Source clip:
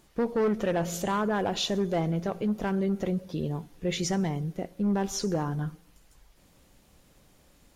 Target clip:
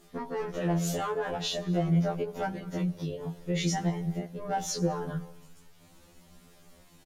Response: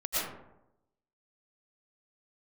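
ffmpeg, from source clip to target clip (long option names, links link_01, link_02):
-filter_complex "[0:a]flanger=delay=16.5:depth=2.5:speed=0.42,asplit=2[link_01][link_02];[1:a]atrim=start_sample=2205,adelay=94[link_03];[link_02][link_03]afir=irnorm=-1:irlink=0,volume=-30.5dB[link_04];[link_01][link_04]amix=inputs=2:normalize=0,atempo=1.1,alimiter=level_in=4dB:limit=-24dB:level=0:latency=1:release=248,volume=-4dB,afftfilt=real='re*2*eq(mod(b,4),0)':imag='im*2*eq(mod(b,4),0)':win_size=2048:overlap=0.75,volume=8.5dB"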